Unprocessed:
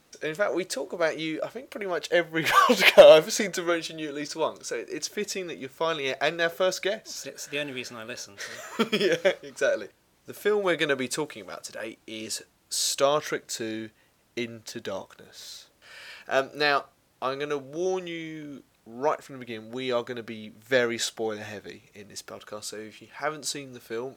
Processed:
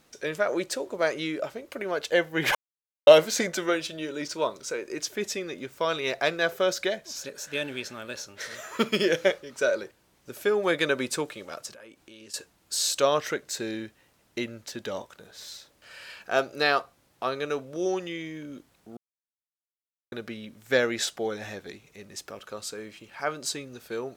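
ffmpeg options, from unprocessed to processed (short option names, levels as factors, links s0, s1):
-filter_complex "[0:a]asettb=1/sr,asplit=3[s0][s1][s2];[s0]atrim=end=11.734[s3];[s1]atrim=start=11.73:end=12.34,asetpts=PTS-STARTPTS,afade=t=in:d=0.004:c=qsin,afade=t=out:st=0.606:d=0.004:c=qsin,acompressor=threshold=0.00355:ratio=3:attack=3.2:release=140:knee=1:detection=peak[s4];[s2]atrim=start=12.336[s5];[s3][s4]acrossfade=d=0.004:c1=hsin:c2=qsin[s6];[s6][s5]acrossfade=d=0.004:c1=qsin:c2=hsin,asplit=5[s7][s8][s9][s10][s11];[s7]atrim=end=2.55,asetpts=PTS-STARTPTS,afade=t=out:st=2.546:d=0.004:c=hsin[s12];[s8]atrim=start=2.55:end=3.07,asetpts=PTS-STARTPTS,volume=0[s13];[s9]atrim=start=3.07:end=18.97,asetpts=PTS-STARTPTS,afade=t=in:d=0.004:c=hsin,afade=t=out:st=15.896:d=0.004:c=hsin[s14];[s10]atrim=start=18.97:end=20.12,asetpts=PTS-STARTPTS,volume=0[s15];[s11]atrim=start=20.12,asetpts=PTS-STARTPTS,afade=t=in:d=0.004:c=hsin[s16];[s12][s13][s14][s15][s16]concat=n=5:v=0:a=1"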